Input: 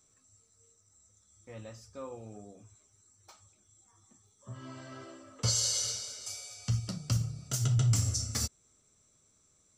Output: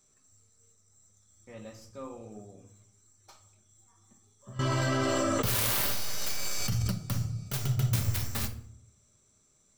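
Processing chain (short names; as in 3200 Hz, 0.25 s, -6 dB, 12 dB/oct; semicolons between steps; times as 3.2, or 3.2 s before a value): tracing distortion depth 0.36 ms; shoebox room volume 950 m³, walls furnished, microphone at 1.2 m; 4.59–6.92 fast leveller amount 100%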